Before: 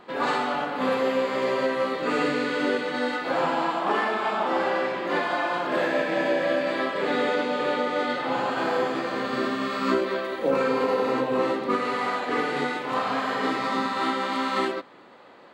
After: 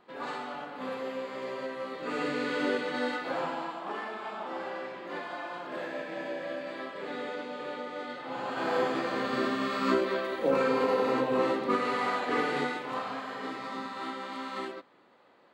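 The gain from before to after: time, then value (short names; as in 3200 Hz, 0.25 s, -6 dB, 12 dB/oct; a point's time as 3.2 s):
1.82 s -12 dB
2.52 s -4.5 dB
3.1 s -4.5 dB
3.78 s -12.5 dB
8.24 s -12.5 dB
8.78 s -3 dB
12.55 s -3 dB
13.25 s -11.5 dB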